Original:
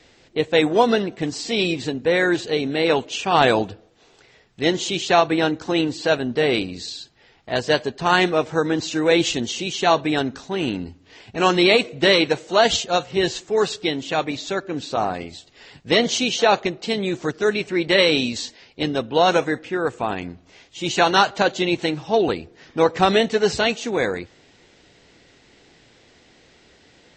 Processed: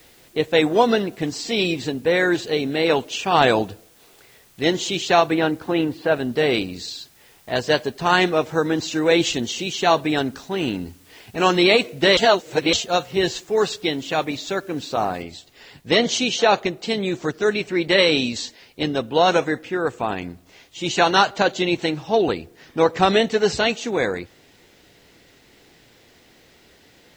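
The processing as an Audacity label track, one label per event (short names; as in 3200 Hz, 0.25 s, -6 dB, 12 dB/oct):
5.340000	6.150000	LPF 3400 Hz -> 2000 Hz
12.170000	12.730000	reverse
15.220000	15.220000	noise floor step -55 dB -65 dB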